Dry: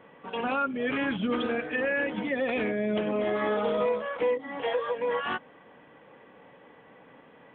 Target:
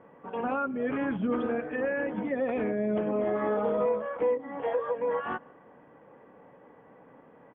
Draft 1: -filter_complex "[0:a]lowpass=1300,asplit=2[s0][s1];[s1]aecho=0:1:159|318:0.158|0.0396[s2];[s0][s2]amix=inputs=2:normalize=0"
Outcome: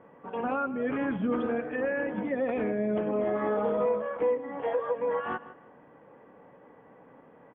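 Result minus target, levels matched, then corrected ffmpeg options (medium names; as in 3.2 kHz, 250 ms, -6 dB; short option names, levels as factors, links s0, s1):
echo-to-direct +11 dB
-filter_complex "[0:a]lowpass=1300,asplit=2[s0][s1];[s1]aecho=0:1:159|318:0.0447|0.0112[s2];[s0][s2]amix=inputs=2:normalize=0"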